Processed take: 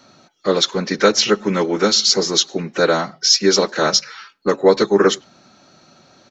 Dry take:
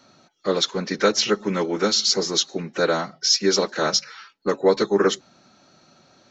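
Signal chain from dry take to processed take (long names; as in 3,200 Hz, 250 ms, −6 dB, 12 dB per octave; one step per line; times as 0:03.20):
far-end echo of a speakerphone 100 ms, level −29 dB
level +5 dB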